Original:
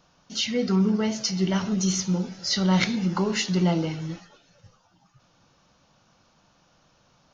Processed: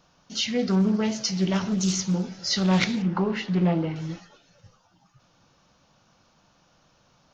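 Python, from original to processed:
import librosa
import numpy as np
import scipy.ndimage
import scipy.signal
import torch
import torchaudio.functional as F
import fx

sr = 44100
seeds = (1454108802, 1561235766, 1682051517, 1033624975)

y = fx.lowpass(x, sr, hz=2300.0, slope=12, at=(3.02, 3.96))
y = fx.doppler_dist(y, sr, depth_ms=0.2)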